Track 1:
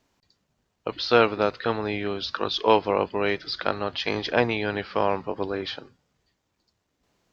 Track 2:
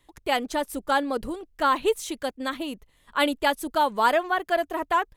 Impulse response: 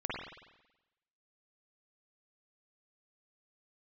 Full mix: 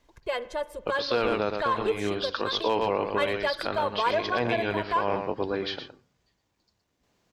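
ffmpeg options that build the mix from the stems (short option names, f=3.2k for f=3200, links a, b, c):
-filter_complex "[0:a]bandreject=f=1.3k:w=28,asoftclip=type=hard:threshold=-5.5dB,volume=-0.5dB,asplit=2[a][b];[b]volume=-9.5dB[c];[1:a]aemphasis=mode=reproduction:type=50fm,aecho=1:1:1.9:0.93,acontrast=82,volume=-14.5dB,asplit=3[d][e][f];[e]volume=-19dB[g];[f]apad=whole_len=323162[h];[a][h]sidechaincompress=threshold=-30dB:ratio=8:attack=16:release=264[i];[2:a]atrim=start_sample=2205[j];[g][j]afir=irnorm=-1:irlink=0[k];[c]aecho=0:1:117:1[l];[i][d][k][l]amix=inputs=4:normalize=0,alimiter=limit=-14.5dB:level=0:latency=1:release=34"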